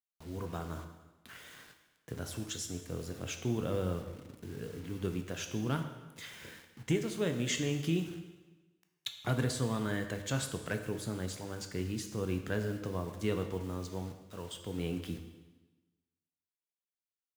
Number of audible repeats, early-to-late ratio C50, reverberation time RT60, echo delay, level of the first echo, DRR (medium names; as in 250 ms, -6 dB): no echo, 8.0 dB, 1.2 s, no echo, no echo, 5.5 dB